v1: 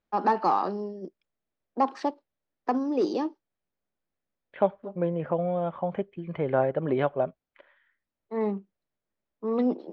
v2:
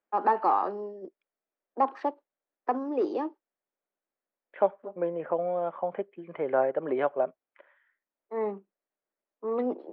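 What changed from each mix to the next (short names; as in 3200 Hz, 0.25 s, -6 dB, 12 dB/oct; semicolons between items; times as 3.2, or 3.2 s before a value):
master: add three-band isolator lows -22 dB, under 280 Hz, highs -19 dB, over 2700 Hz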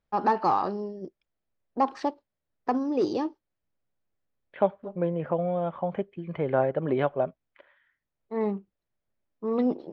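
first voice: remove steep high-pass 170 Hz 48 dB/oct; master: remove three-band isolator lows -22 dB, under 280 Hz, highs -19 dB, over 2700 Hz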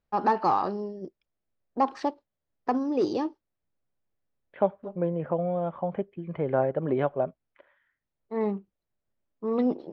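second voice: add high shelf 2100 Hz -8.5 dB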